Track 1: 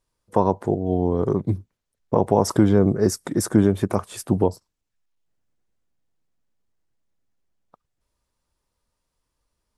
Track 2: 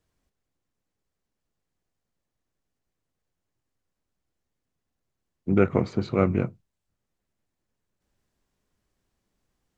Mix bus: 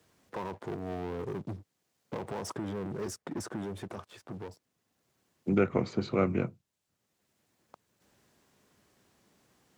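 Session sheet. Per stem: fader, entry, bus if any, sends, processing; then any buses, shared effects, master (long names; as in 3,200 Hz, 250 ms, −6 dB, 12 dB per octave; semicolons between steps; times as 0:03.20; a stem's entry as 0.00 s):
−19.0 dB, 0.00 s, no send, low-pass that shuts in the quiet parts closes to 2,300 Hz, open at −12.5 dBFS; brickwall limiter −11 dBFS, peak gain reduction 7 dB; leveller curve on the samples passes 3; automatic ducking −15 dB, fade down 1.95 s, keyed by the second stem
+0.5 dB, 0.00 s, no send, high-pass filter 79 Hz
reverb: not used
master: high-pass filter 130 Hz 6 dB per octave; multiband upward and downward compressor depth 40%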